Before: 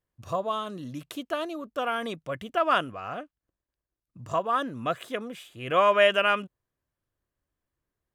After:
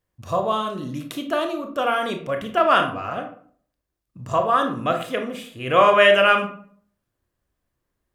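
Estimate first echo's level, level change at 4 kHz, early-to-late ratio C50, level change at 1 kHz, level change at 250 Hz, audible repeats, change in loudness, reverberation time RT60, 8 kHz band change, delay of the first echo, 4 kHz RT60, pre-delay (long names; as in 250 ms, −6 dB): no echo audible, +6.0 dB, 9.0 dB, +7.0 dB, +7.5 dB, no echo audible, +7.0 dB, 0.55 s, can't be measured, no echo audible, 0.30 s, 24 ms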